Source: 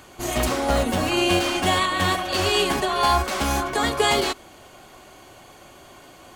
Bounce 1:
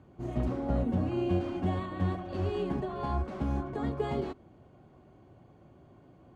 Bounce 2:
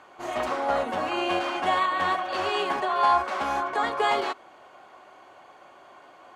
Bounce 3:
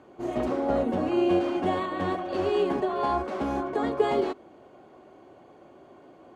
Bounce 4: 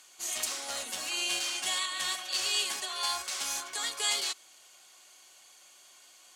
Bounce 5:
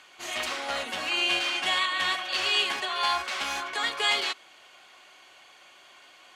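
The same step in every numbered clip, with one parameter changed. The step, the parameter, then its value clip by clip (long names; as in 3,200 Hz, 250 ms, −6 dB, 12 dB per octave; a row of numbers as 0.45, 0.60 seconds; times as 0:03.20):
resonant band-pass, frequency: 130, 980, 360, 7,000, 2,700 Hertz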